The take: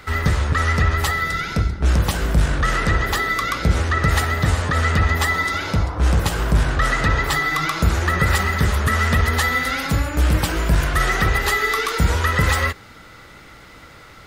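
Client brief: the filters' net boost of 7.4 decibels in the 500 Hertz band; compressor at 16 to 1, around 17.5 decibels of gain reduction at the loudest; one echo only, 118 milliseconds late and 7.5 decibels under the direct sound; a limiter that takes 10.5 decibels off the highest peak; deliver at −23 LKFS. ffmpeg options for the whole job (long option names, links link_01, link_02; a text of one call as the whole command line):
ffmpeg -i in.wav -af "equalizer=frequency=500:width_type=o:gain=9,acompressor=threshold=-29dB:ratio=16,alimiter=level_in=3dB:limit=-24dB:level=0:latency=1,volume=-3dB,aecho=1:1:118:0.422,volume=12.5dB" out.wav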